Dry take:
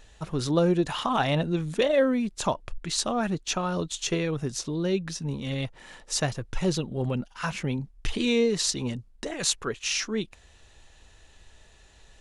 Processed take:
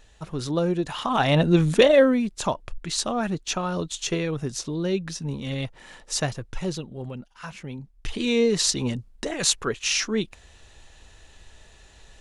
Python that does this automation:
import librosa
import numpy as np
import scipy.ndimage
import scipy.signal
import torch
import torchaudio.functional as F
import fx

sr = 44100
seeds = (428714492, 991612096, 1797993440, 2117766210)

y = fx.gain(x, sr, db=fx.line((0.94, -1.5), (1.63, 10.5), (2.35, 1.0), (6.24, 1.0), (7.15, -7.5), (7.68, -7.5), (8.54, 4.0)))